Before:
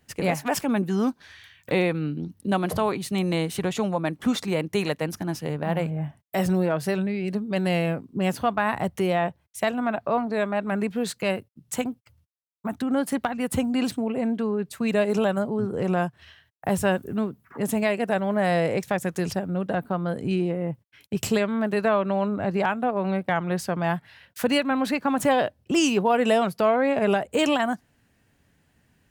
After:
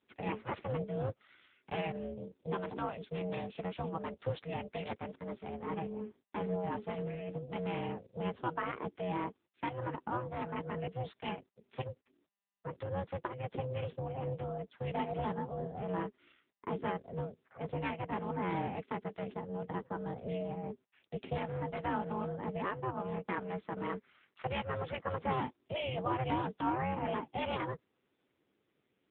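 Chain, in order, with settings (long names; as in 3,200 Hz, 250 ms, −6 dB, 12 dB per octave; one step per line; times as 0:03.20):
frequency shifter −46 Hz
ring modulation 320 Hz
level −8.5 dB
AMR narrowband 6.7 kbit/s 8,000 Hz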